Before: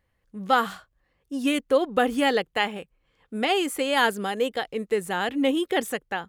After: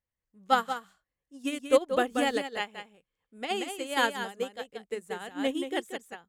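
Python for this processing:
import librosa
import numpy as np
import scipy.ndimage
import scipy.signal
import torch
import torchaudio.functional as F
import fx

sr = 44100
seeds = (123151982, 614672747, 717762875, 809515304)

p1 = fx.peak_eq(x, sr, hz=7300.0, db=7.0, octaves=0.74)
p2 = p1 + fx.echo_single(p1, sr, ms=182, db=-4.0, dry=0)
y = fx.upward_expand(p2, sr, threshold_db=-29.0, expansion=2.5)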